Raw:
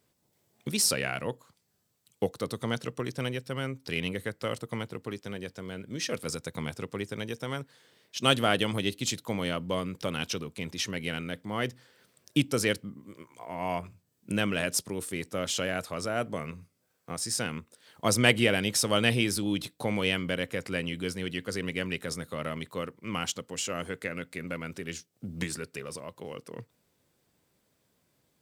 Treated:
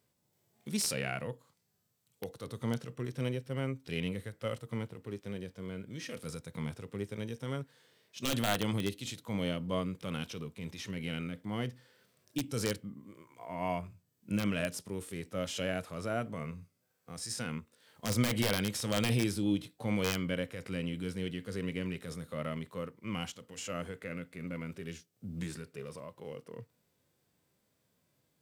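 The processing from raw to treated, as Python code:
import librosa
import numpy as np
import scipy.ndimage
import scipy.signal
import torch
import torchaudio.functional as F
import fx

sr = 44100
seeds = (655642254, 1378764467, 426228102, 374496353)

y = (np.mod(10.0 ** (14.0 / 20.0) * x + 1.0, 2.0) - 1.0) / 10.0 ** (14.0 / 20.0)
y = fx.hpss(y, sr, part='percussive', gain_db=-14)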